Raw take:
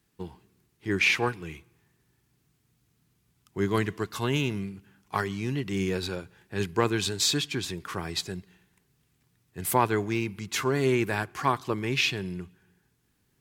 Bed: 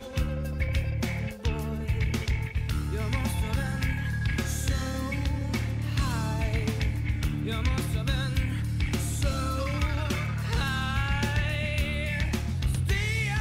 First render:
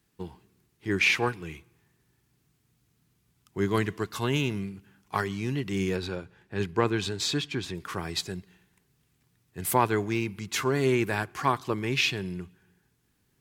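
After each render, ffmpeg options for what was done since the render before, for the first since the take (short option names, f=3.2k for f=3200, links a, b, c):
-filter_complex "[0:a]asettb=1/sr,asplit=3[a][b][c];[a]atrim=end=5.964[d];[b]atrim=start=5.96:end=7.75,asetpts=PTS-STARTPTS,afade=t=in:d=0.004:c=qsin,afade=t=out:st=1.786:d=0.004:c=qsin,lowpass=f=3.3k:p=1[e];[c]atrim=start=7.746[f];[d][e]acrossfade=d=0.004:c1=hsin:c2=qsin[g];[g][f]acrossfade=d=0.004:c1=qsin:c2=hsin"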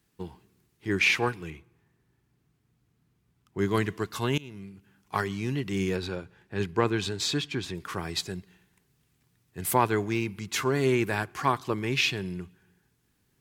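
-filter_complex "[0:a]asettb=1/sr,asplit=3[a][b][c];[a]atrim=end=1.504[d];[b]atrim=start=1.5:end=3.59,asetpts=PTS-STARTPTS,afade=t=in:d=0.004:c=qsin,afade=t=out:st=2.086:d=0.004:c=qsin,highshelf=f=3.1k:g=-10.5[e];[c]atrim=start=3.586[f];[d][e]acrossfade=d=0.004:c1=hsin:c2=qsin[g];[g][f]acrossfade=d=0.004:c1=qsin:c2=hsin,asplit=2[h][i];[h]atrim=end=4.38,asetpts=PTS-STARTPTS,afade=t=out:st=4.376:d=0.004:c=hsin:silence=0.0794328[j];[i]atrim=start=4.38,asetpts=PTS-STARTPTS,afade=t=in:d=0.8:silence=0.0794328[k];[j][k]concat=n=2:v=0:a=1"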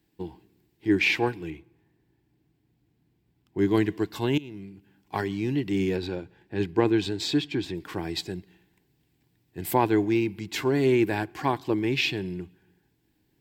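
-af "equalizer=f=315:t=o:w=0.33:g=11,equalizer=f=800:t=o:w=0.33:g=4,equalizer=f=1.25k:t=o:w=0.33:g=-12,equalizer=f=6.3k:t=o:w=0.33:g=-7,equalizer=f=10k:t=o:w=0.33:g=-11"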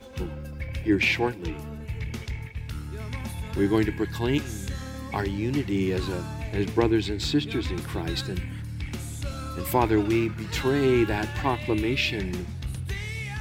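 -filter_complex "[1:a]volume=-5.5dB[a];[0:a][a]amix=inputs=2:normalize=0"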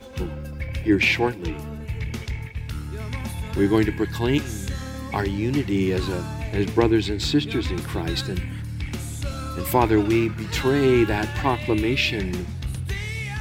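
-af "volume=3.5dB"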